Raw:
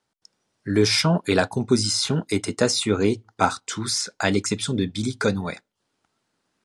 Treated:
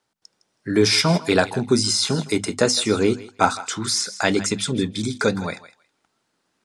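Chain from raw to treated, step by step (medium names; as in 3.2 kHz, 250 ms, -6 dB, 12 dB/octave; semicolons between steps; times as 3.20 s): bass shelf 120 Hz -4 dB; hum notches 50/100/150/200/250 Hz; thinning echo 160 ms, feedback 17%, high-pass 740 Hz, level -14.5 dB; trim +2.5 dB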